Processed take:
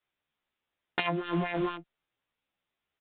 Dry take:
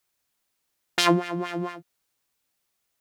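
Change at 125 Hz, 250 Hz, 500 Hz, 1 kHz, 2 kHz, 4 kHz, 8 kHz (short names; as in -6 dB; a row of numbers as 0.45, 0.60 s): -4.0 dB, -5.5 dB, -5.5 dB, -6.5 dB, -5.0 dB, -11.5 dB, under -40 dB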